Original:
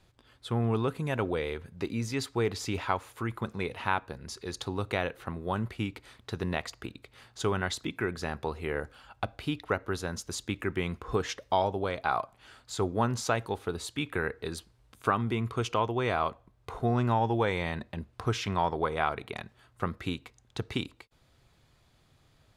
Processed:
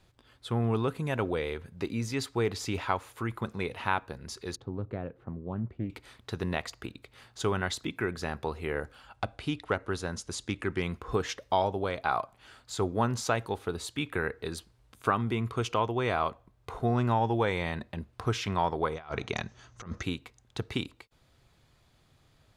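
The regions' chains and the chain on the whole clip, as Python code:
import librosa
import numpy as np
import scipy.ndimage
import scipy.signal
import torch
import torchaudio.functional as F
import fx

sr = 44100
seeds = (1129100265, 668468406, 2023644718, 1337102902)

y = fx.chain(x, sr, fx.bandpass_q(hz=150.0, q=0.59),
    fx.doppler_dist(depth_ms=0.33), at=(4.56, 5.9))
y = fx.chain(y, sr, fx.self_delay(depth_ms=0.062),
    fx.resample_bad(factor=2, down='none', up='filtered'), at=(9.15, 10.82))
y = fx.chain(y, sr, fx.bass_treble(bass_db=3, treble_db=-4),
    fx.over_compress(threshold_db=-35.0, ratio=-0.5),
    fx.lowpass_res(hz=6200.0, q=12.0), at=(18.94, 20.03))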